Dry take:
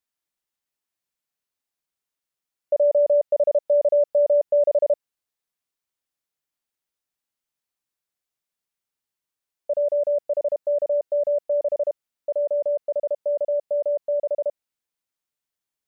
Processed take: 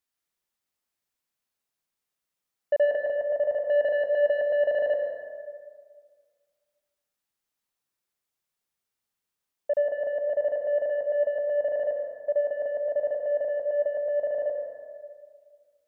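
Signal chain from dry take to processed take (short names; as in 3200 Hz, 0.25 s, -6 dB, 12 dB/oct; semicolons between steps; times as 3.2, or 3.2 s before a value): 2.95–3.61 dynamic EQ 330 Hz, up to -6 dB, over -33 dBFS, Q 0.73; soft clip -16.5 dBFS, distortion -18 dB; reverb RT60 1.8 s, pre-delay 82 ms, DRR 2 dB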